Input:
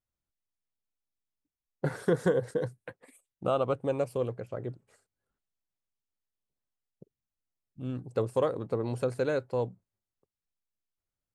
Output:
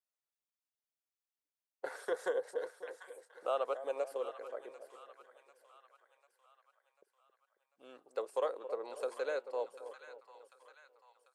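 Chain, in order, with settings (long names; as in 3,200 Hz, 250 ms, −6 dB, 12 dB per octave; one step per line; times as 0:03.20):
high-pass filter 480 Hz 24 dB per octave
echo with a time of its own for lows and highs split 920 Hz, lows 271 ms, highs 744 ms, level −11 dB
level −5 dB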